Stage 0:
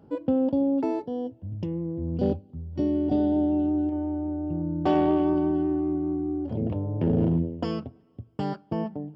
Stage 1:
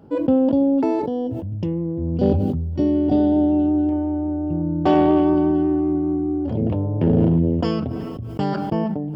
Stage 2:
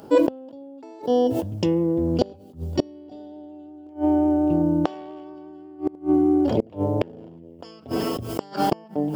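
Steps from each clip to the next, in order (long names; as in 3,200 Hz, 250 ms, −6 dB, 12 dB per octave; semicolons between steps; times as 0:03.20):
level that may fall only so fast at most 23 dB per second; level +6 dB
gate with flip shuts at −13 dBFS, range −28 dB; bass and treble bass −13 dB, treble +13 dB; level +8.5 dB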